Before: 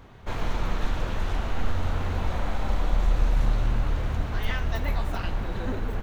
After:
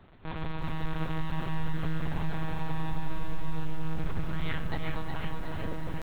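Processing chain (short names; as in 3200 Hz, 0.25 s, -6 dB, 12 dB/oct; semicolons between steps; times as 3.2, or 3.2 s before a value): monotone LPC vocoder at 8 kHz 150 Hz; pitch shift +1 st; lo-fi delay 0.366 s, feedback 55%, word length 8-bit, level -5.5 dB; gain -7 dB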